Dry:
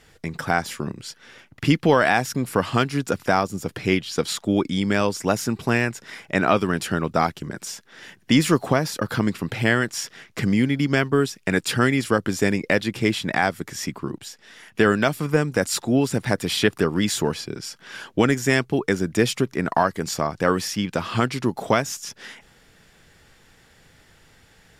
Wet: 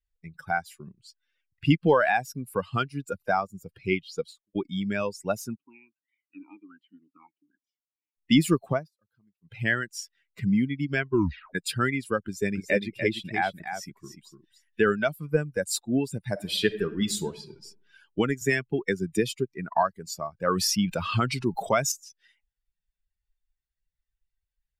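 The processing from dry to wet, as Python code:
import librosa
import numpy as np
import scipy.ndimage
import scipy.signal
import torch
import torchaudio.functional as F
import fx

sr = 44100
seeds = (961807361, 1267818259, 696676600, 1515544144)

y = fx.studio_fade_out(x, sr, start_s=4.15, length_s=0.4)
y = fx.vowel_sweep(y, sr, vowels='i-u', hz=1.3, at=(5.55, 8.16), fade=0.02)
y = fx.echo_single(y, sr, ms=294, db=-4.0, at=(12.25, 14.94))
y = fx.reverb_throw(y, sr, start_s=16.3, length_s=1.3, rt60_s=1.4, drr_db=5.0)
y = fx.band_squash(y, sr, depth_pct=70, at=(18.41, 19.3))
y = fx.env_flatten(y, sr, amount_pct=50, at=(20.47, 21.92))
y = fx.edit(y, sr, fx.fade_down_up(start_s=8.76, length_s=0.79, db=-18.5, fade_s=0.13),
    fx.tape_stop(start_s=11.1, length_s=0.45), tone=tone)
y = fx.bin_expand(y, sr, power=2.0)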